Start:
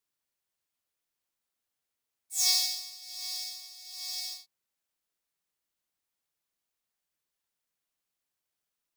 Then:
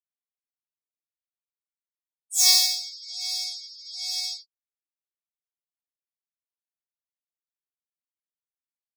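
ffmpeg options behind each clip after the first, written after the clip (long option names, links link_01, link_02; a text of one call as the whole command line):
ffmpeg -i in.wav -af "afftdn=noise_reduction=35:noise_floor=-45,volume=8dB" out.wav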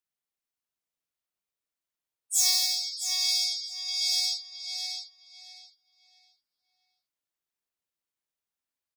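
ffmpeg -i in.wav -filter_complex "[0:a]acompressor=threshold=-25dB:ratio=5,asplit=2[link_01][link_02];[link_02]adelay=663,lowpass=frequency=3600:poles=1,volume=-3dB,asplit=2[link_03][link_04];[link_04]adelay=663,lowpass=frequency=3600:poles=1,volume=0.31,asplit=2[link_05][link_06];[link_06]adelay=663,lowpass=frequency=3600:poles=1,volume=0.31,asplit=2[link_07][link_08];[link_08]adelay=663,lowpass=frequency=3600:poles=1,volume=0.31[link_09];[link_03][link_05][link_07][link_09]amix=inputs=4:normalize=0[link_10];[link_01][link_10]amix=inputs=2:normalize=0,volume=3.5dB" out.wav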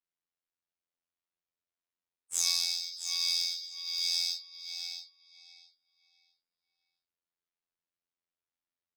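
ffmpeg -i in.wav -af "adynamicsmooth=sensitivity=5:basefreq=5400,afftfilt=real='hypot(re,im)*cos(PI*b)':imag='0':win_size=2048:overlap=0.75" out.wav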